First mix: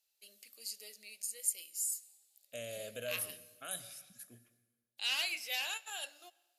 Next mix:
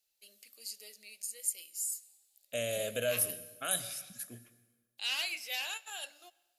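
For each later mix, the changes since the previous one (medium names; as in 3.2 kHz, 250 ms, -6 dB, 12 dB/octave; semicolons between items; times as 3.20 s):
second voice +9.0 dB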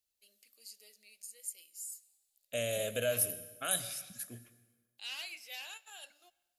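first voice -8.0 dB; master: add peaking EQ 75 Hz +14.5 dB 0.45 oct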